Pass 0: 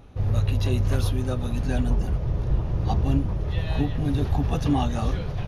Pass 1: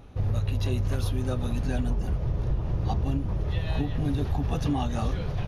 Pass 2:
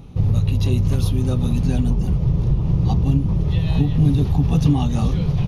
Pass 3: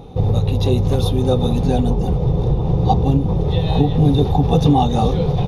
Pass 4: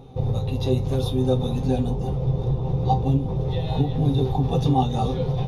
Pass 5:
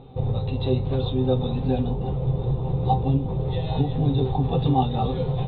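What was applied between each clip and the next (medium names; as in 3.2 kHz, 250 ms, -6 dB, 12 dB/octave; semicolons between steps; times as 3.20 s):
compression, threshold -22 dBFS, peak gain reduction 6.5 dB
fifteen-band graphic EQ 160 Hz +10 dB, 630 Hz -6 dB, 1.6 kHz -10 dB; trim +6.5 dB
small resonant body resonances 490/750/3600 Hz, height 15 dB, ringing for 20 ms
feedback comb 130 Hz, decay 0.19 s, harmonics all, mix 80%
Chebyshev low-pass 4 kHz, order 6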